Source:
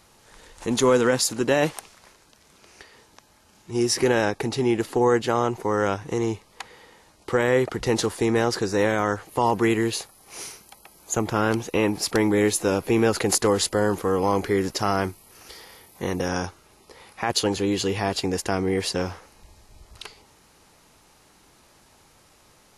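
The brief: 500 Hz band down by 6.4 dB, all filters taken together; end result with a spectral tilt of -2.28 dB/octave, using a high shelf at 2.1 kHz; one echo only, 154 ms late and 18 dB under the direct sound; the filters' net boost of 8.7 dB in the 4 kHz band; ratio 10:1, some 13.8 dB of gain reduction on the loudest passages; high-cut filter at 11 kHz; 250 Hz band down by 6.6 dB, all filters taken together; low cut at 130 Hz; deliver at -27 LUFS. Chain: high-pass 130 Hz; low-pass 11 kHz; peaking EQ 250 Hz -6.5 dB; peaking EQ 500 Hz -6 dB; treble shelf 2.1 kHz +5 dB; peaking EQ 4 kHz +6 dB; compression 10:1, threshold -26 dBFS; delay 154 ms -18 dB; trim +4 dB

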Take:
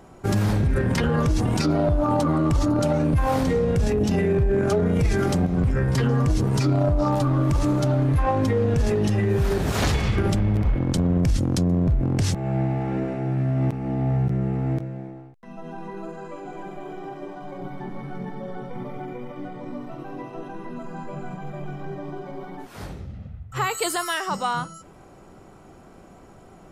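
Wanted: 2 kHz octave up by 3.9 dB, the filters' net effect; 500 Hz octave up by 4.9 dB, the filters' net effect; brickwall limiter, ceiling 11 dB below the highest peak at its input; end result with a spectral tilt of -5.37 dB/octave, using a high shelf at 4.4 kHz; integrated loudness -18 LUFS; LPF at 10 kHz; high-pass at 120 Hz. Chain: high-pass 120 Hz; low-pass 10 kHz; peaking EQ 500 Hz +6 dB; peaking EQ 2 kHz +5.5 dB; treble shelf 4.4 kHz -5 dB; trim +10.5 dB; peak limiter -8.5 dBFS

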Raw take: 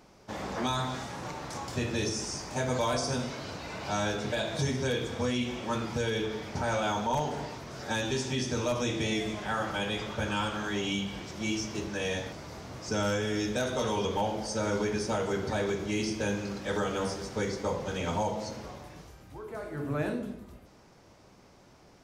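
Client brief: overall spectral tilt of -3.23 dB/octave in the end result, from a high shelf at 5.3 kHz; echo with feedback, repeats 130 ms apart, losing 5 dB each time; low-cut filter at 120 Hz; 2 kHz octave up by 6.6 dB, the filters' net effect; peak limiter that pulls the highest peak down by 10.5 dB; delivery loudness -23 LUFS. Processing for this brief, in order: high-pass 120 Hz; peaking EQ 2 kHz +7.5 dB; treble shelf 5.3 kHz +8.5 dB; peak limiter -24.5 dBFS; feedback delay 130 ms, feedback 56%, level -5 dB; trim +9 dB

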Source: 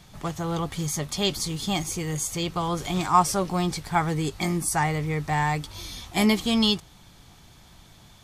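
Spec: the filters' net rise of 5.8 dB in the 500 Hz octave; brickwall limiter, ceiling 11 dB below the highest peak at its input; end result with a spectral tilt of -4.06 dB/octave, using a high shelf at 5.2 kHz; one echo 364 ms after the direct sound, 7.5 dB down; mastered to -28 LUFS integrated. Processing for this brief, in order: peaking EQ 500 Hz +7.5 dB; treble shelf 5.2 kHz +5.5 dB; peak limiter -14.5 dBFS; delay 364 ms -7.5 dB; trim -3 dB

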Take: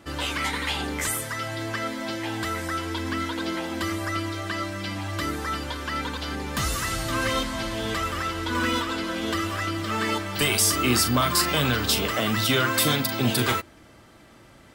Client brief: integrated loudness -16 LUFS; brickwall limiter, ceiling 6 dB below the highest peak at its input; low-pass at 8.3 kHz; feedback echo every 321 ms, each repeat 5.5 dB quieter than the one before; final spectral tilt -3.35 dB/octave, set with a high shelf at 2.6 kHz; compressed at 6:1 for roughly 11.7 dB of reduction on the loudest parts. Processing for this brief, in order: low-pass 8.3 kHz; treble shelf 2.6 kHz +4 dB; compression 6:1, threshold -30 dBFS; peak limiter -24.5 dBFS; feedback delay 321 ms, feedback 53%, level -5.5 dB; trim +16 dB

